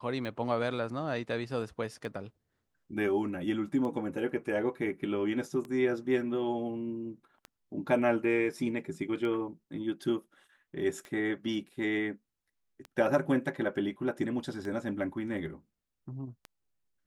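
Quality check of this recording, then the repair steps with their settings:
tick 33 1/3 rpm -27 dBFS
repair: de-click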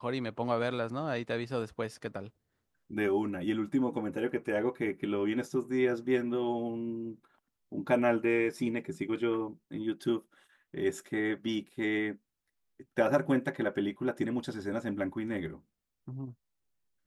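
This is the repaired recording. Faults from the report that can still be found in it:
none

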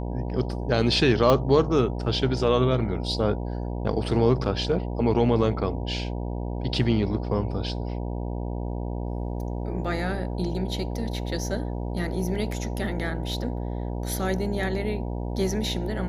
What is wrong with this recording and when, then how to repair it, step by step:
buzz 60 Hz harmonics 16 -30 dBFS
1.3 pop -9 dBFS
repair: de-click; de-hum 60 Hz, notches 16

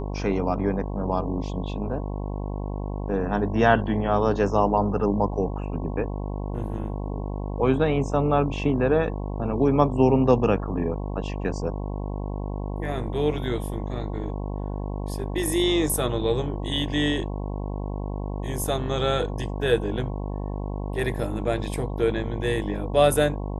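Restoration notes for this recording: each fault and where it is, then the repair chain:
buzz 50 Hz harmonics 22 -30 dBFS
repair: de-hum 50 Hz, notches 22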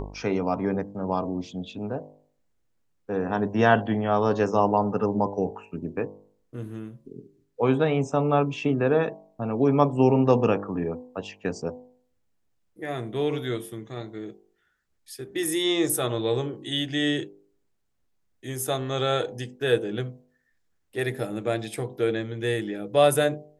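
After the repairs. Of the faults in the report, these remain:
none

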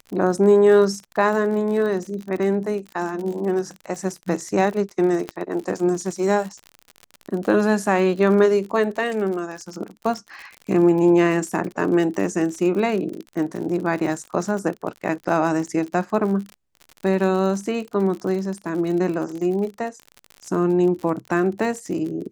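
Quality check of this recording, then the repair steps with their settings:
crackle 54/s -29 dBFS
5.29 pop -14 dBFS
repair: de-click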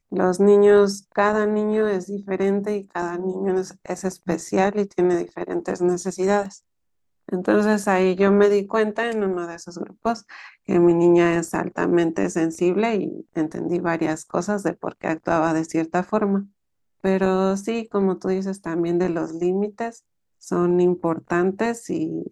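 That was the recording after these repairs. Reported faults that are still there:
5.29 pop

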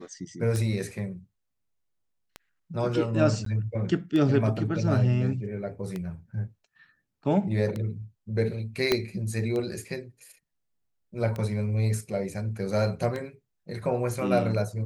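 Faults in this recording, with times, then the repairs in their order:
tick 33 1/3 rpm -20 dBFS
3.45–3.46 gap 13 ms
8.92 pop -8 dBFS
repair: de-click; interpolate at 3.45, 13 ms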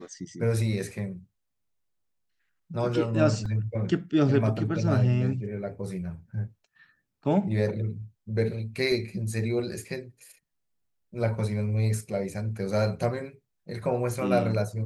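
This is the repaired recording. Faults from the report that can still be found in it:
8.92 pop

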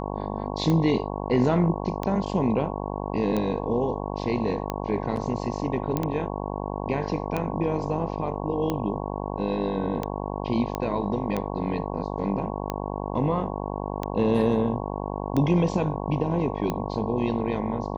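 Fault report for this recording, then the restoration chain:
buzz 50 Hz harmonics 22 -31 dBFS
tick 45 rpm -14 dBFS
5.97 pop -12 dBFS
10.75 pop -15 dBFS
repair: de-click; de-hum 50 Hz, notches 22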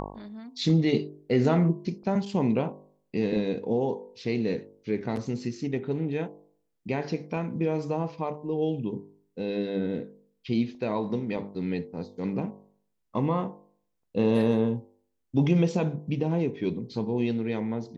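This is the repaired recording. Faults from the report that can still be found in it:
none

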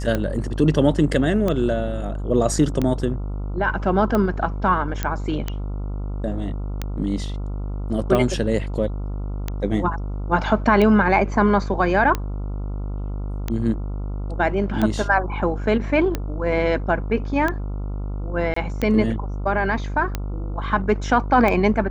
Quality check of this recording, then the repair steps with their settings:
buzz 50 Hz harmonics 28 -27 dBFS
tick 45 rpm -10 dBFS
5.03 pop -9 dBFS
18.54–18.56 gap 24 ms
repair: de-click; de-hum 50 Hz, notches 28; interpolate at 18.54, 24 ms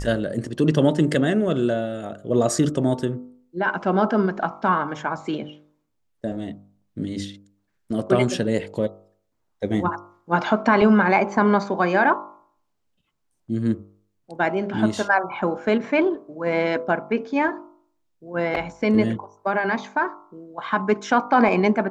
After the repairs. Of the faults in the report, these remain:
none

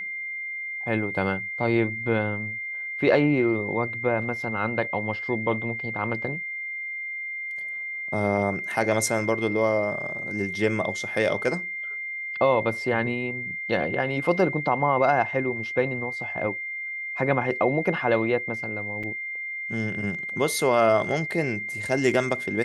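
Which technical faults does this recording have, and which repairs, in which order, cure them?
tone 2100 Hz -30 dBFS
19.03–19.04 gap 5.6 ms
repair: notch 2100 Hz, Q 30; interpolate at 19.03, 5.6 ms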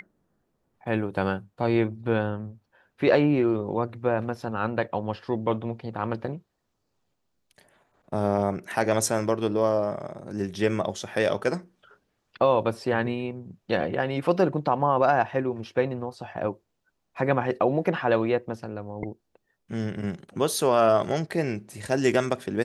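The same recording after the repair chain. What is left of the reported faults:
none

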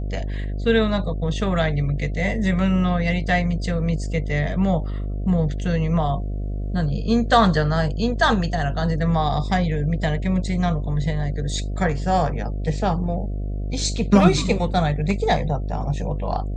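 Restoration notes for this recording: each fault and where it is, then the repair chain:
buzz 50 Hz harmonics 14 -26 dBFS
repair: de-hum 50 Hz, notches 14

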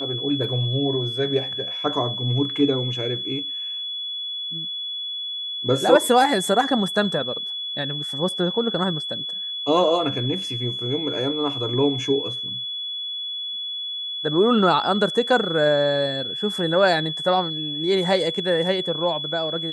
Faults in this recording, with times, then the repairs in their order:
tone 3400 Hz -27 dBFS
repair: notch 3400 Hz, Q 30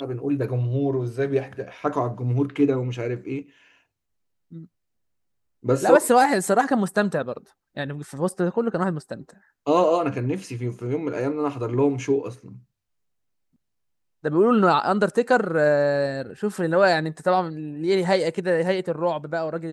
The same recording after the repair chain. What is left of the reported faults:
none

